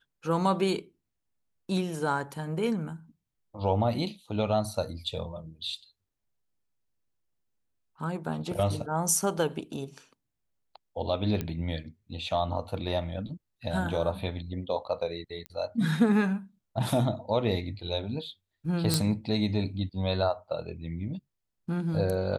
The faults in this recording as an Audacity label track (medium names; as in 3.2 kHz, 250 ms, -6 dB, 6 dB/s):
11.410000	11.410000	pop -18 dBFS
15.460000	15.460000	pop -24 dBFS
18.940000	18.940000	pop -9 dBFS